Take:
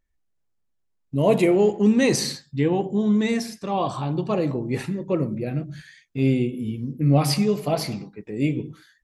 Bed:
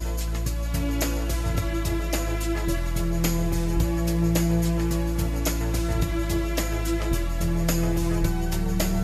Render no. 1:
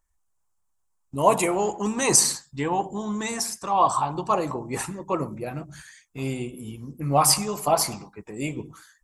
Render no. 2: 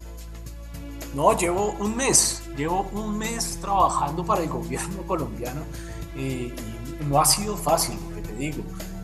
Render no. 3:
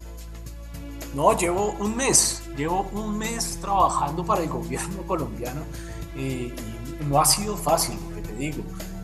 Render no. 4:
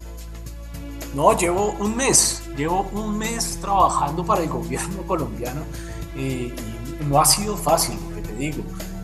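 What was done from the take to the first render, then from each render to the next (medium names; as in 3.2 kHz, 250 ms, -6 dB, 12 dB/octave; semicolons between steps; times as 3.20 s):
graphic EQ 125/250/500/1000/2000/4000/8000 Hz -7/-9/-8/+10/-7/-8/+10 dB; harmonic-percussive split percussive +7 dB
add bed -11 dB
no audible change
trim +3 dB; peak limiter -1 dBFS, peak gain reduction 1.5 dB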